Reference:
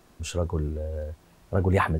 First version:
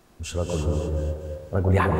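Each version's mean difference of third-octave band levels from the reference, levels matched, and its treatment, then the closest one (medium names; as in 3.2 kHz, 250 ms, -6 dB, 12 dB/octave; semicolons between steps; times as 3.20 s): 6.0 dB: on a send: echo whose repeats swap between lows and highs 120 ms, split 940 Hz, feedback 65%, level -3.5 dB; on the sum: gated-style reverb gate 350 ms rising, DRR 3.5 dB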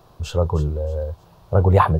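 4.0 dB: graphic EQ 125/250/500/1000/2000/4000/8000 Hz +9/-9/+4/+7/-10/+4/-10 dB; on a send: feedback echo behind a high-pass 311 ms, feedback 32%, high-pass 4 kHz, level -10 dB; on the sum: trim +4.5 dB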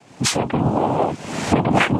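10.5 dB: recorder AGC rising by 51 dB/s; noise-vocoded speech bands 4; trim +6.5 dB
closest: second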